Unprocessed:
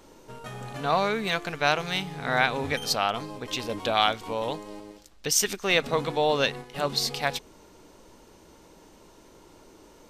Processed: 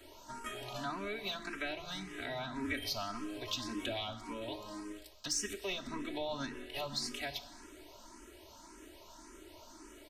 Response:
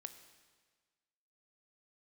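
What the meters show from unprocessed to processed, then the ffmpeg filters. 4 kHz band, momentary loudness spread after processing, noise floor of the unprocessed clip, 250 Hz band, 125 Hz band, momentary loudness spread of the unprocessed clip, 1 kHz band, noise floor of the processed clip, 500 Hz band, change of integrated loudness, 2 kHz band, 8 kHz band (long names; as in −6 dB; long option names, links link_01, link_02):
−11.0 dB, 18 LU, −54 dBFS, −7.5 dB, −13.5 dB, 14 LU, −16.0 dB, −56 dBFS, −14.5 dB, −13.0 dB, −14.0 dB, −11.5 dB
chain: -filter_complex "[0:a]acrossover=split=280[link_01][link_02];[link_02]acompressor=threshold=-36dB:ratio=10[link_03];[link_01][link_03]amix=inputs=2:normalize=0,aecho=1:1:3.1:0.9,acrossover=split=390|1100[link_04][link_05][link_06];[link_06]acontrast=33[link_07];[link_04][link_05][link_07]amix=inputs=3:normalize=0,asoftclip=type=tanh:threshold=-16.5dB[link_08];[1:a]atrim=start_sample=2205[link_09];[link_08][link_09]afir=irnorm=-1:irlink=0,asplit=2[link_10][link_11];[link_11]afreqshift=1.8[link_12];[link_10][link_12]amix=inputs=2:normalize=1,volume=1.5dB"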